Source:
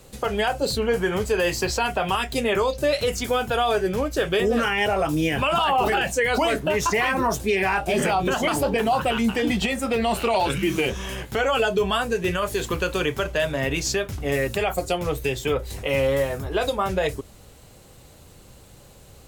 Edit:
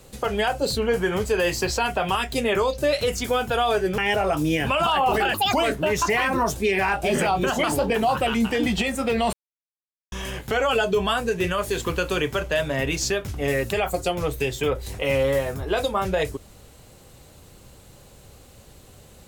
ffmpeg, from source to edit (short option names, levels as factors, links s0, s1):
-filter_complex "[0:a]asplit=6[s0][s1][s2][s3][s4][s5];[s0]atrim=end=3.982[s6];[s1]atrim=start=4.698:end=6.064[s7];[s2]atrim=start=6.06:end=6.37,asetpts=PTS-STARTPTS,asetrate=71883,aresample=44100,atrim=end_sample=8387,asetpts=PTS-STARTPTS[s8];[s3]atrim=start=6.366:end=10.17,asetpts=PTS-STARTPTS,afade=t=out:st=3.8:d=0.004:c=hsin[s9];[s4]atrim=start=10.17:end=10.96,asetpts=PTS-STARTPTS,volume=0[s10];[s5]atrim=start=10.96,asetpts=PTS-STARTPTS,afade=t=in:d=0.004:c=hsin[s11];[s6][s7]acrossfade=d=0.004:c1=hsin:c2=hsin[s12];[s12][s8]acrossfade=d=0.004:c1=hsin:c2=hsin[s13];[s9][s10][s11]concat=n=3:v=0:a=1[s14];[s13][s14]acrossfade=d=0.004:c1=hsin:c2=hsin"